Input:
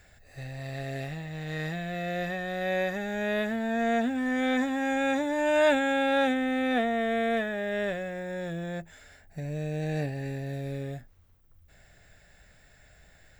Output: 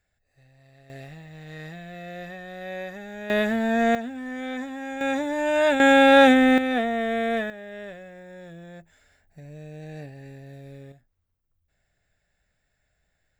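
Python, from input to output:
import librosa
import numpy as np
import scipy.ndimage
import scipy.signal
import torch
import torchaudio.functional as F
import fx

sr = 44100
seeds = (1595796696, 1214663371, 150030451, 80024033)

y = fx.gain(x, sr, db=fx.steps((0.0, -18.5), (0.9, -6.0), (3.3, 6.0), (3.95, -5.5), (5.01, 1.5), (5.8, 11.0), (6.58, 2.0), (7.5, -8.5), (10.92, -16.0)))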